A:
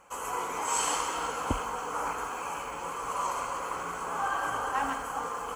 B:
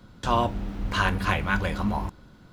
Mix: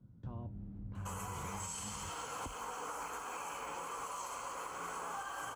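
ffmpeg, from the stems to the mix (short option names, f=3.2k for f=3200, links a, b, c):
-filter_complex "[0:a]lowshelf=f=100:g=-9,acrossover=split=130|3000[a][b][c];[b]acompressor=threshold=-36dB:ratio=6[d];[a][d][c]amix=inputs=3:normalize=0,adelay=950,volume=-3dB[e];[1:a]acompressor=threshold=-32dB:ratio=2,bandpass=f=120:t=q:w=1.5:csg=0,volume=-4.5dB[f];[e][f]amix=inputs=2:normalize=0,alimiter=level_in=8.5dB:limit=-24dB:level=0:latency=1:release=206,volume=-8.5dB"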